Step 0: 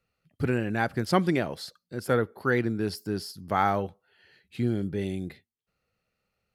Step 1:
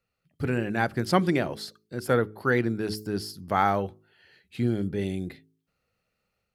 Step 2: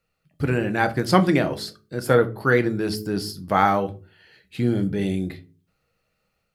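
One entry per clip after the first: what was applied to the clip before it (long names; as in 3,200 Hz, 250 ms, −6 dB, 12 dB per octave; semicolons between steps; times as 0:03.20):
hum removal 53.24 Hz, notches 8; automatic gain control gain up to 4 dB; level −2.5 dB
rectangular room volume 130 cubic metres, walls furnished, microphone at 0.58 metres; level +4.5 dB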